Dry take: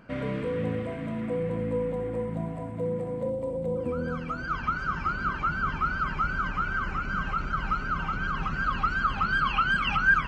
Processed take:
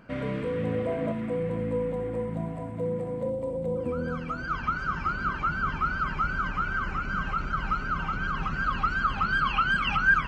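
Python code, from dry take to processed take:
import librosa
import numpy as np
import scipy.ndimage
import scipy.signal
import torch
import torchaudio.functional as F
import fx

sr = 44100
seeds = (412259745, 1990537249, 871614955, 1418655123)

y = fx.peak_eq(x, sr, hz=560.0, db=fx.line((0.67, 1.5), (1.11, 13.0)), octaves=1.4, at=(0.67, 1.11), fade=0.02)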